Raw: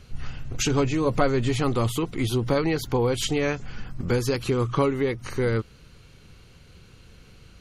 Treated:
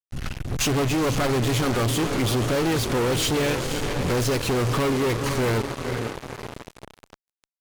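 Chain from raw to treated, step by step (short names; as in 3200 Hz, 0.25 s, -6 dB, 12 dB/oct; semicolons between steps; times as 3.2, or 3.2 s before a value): CVSD 64 kbps; AGC gain up to 3.5 dB; tube stage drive 11 dB, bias 0.65; diffused feedback echo 0.493 s, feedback 60%, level -12.5 dB; fuzz box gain 35 dB, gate -36 dBFS; gain -7 dB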